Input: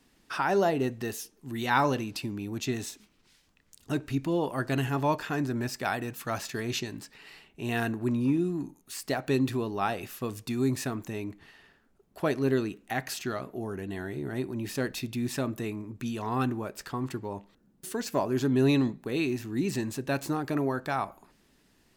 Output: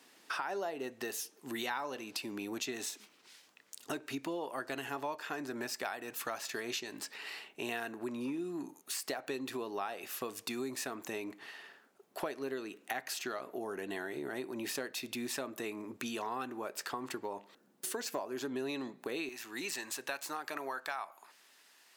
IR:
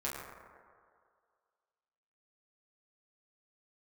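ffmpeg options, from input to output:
-af "asetnsamples=nb_out_samples=441:pad=0,asendcmd='19.29 highpass f 890',highpass=420,acompressor=threshold=-42dB:ratio=6,volume=6dB"

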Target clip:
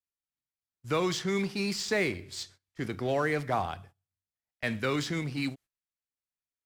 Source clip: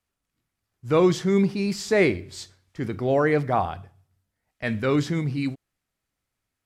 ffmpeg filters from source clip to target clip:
ffmpeg -i in.wav -filter_complex "[0:a]tiltshelf=frequency=1400:gain=-4,agate=range=-18dB:threshold=-49dB:ratio=16:detection=peak,acrossover=split=240|660|6100[link_01][link_02][link_03][link_04];[link_01]acompressor=threshold=-34dB:ratio=4[link_05];[link_02]acompressor=threshold=-31dB:ratio=4[link_06];[link_03]acompressor=threshold=-28dB:ratio=4[link_07];[link_04]acompressor=threshold=-45dB:ratio=4[link_08];[link_05][link_06][link_07][link_08]amix=inputs=4:normalize=0,asplit=2[link_09][link_10];[link_10]acrusher=bits=4:mix=0:aa=0.5,volume=-12dB[link_11];[link_09][link_11]amix=inputs=2:normalize=0,volume=-3dB" out.wav

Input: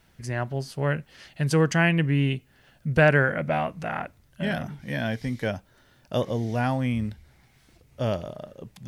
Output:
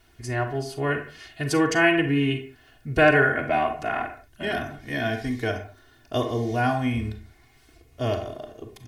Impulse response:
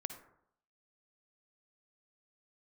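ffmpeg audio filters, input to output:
-filter_complex "[0:a]aecho=1:1:2.8:0.91[link_01];[1:a]atrim=start_sample=2205,afade=type=out:start_time=0.37:duration=0.01,atrim=end_sample=16758,asetrate=66150,aresample=44100[link_02];[link_01][link_02]afir=irnorm=-1:irlink=0,volume=5.5dB"

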